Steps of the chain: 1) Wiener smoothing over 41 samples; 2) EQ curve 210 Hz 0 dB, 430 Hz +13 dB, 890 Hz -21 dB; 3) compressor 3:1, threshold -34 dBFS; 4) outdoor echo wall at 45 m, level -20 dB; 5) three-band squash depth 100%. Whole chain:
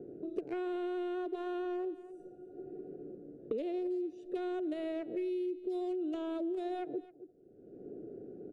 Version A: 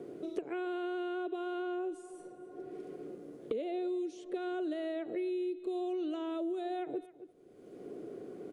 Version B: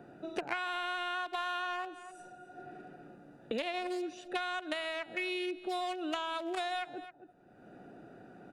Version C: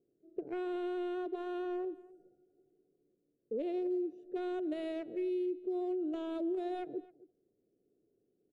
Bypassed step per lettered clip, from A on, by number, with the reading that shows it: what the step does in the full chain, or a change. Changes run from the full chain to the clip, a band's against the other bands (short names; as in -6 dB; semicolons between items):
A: 1, 2 kHz band +3.5 dB; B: 2, 250 Hz band -18.5 dB; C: 5, crest factor change -2.5 dB